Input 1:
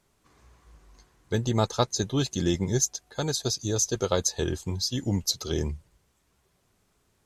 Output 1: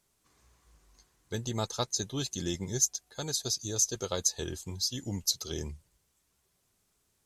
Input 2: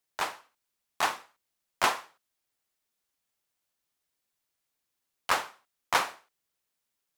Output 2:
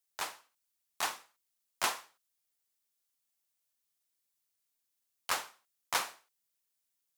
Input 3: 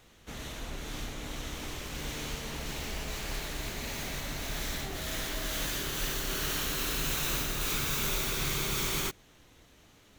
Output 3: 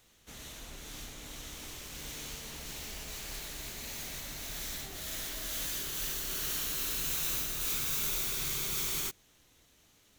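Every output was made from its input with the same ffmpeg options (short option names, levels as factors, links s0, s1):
-af "highshelf=f=3800:g=11,volume=0.355"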